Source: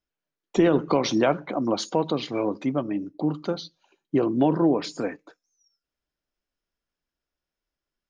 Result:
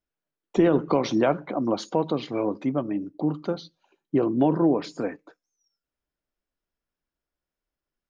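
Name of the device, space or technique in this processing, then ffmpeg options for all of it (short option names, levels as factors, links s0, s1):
behind a face mask: -af "highshelf=f=2700:g=-8"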